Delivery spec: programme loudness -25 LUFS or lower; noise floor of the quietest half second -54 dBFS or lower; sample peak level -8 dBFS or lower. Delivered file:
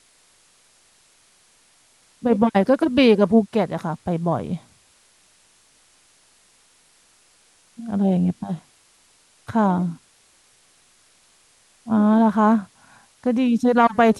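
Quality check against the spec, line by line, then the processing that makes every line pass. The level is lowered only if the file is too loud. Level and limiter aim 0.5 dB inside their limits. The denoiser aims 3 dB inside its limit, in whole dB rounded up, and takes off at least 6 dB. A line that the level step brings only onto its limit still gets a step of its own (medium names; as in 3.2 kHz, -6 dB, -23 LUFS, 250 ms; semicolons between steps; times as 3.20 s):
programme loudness -20.0 LUFS: fail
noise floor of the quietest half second -58 dBFS: pass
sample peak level -5.0 dBFS: fail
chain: trim -5.5 dB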